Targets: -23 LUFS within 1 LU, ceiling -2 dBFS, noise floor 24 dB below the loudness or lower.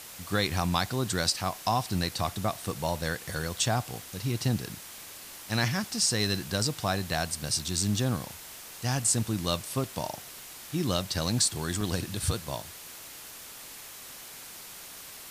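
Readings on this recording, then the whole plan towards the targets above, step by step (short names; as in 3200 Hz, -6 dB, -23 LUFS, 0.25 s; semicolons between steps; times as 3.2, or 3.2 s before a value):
dropouts 1; longest dropout 2.4 ms; noise floor -45 dBFS; noise floor target -54 dBFS; loudness -29.5 LUFS; peak -11.5 dBFS; loudness target -23.0 LUFS
-> interpolate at 11.81, 2.4 ms; noise print and reduce 9 dB; gain +6.5 dB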